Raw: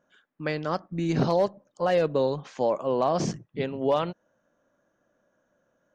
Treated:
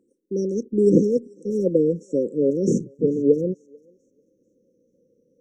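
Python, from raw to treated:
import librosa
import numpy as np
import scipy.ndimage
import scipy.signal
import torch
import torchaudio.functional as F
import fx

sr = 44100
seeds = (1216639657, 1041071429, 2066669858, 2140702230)

y = fx.speed_glide(x, sr, from_pct=129, to_pct=91)
y = fx.brickwall_bandstop(y, sr, low_hz=550.0, high_hz=5400.0)
y = fx.peak_eq(y, sr, hz=360.0, db=11.5, octaves=2.6)
y = fx.echo_thinned(y, sr, ms=441, feedback_pct=38, hz=1100.0, wet_db=-21.5)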